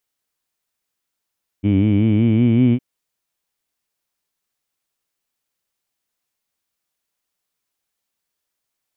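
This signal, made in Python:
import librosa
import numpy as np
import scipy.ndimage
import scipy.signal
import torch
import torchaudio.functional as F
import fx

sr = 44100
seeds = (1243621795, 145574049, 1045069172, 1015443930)

y = fx.vowel(sr, seeds[0], length_s=1.16, word='heed', hz=97.2, glide_st=4.5, vibrato_hz=5.3, vibrato_st=0.9)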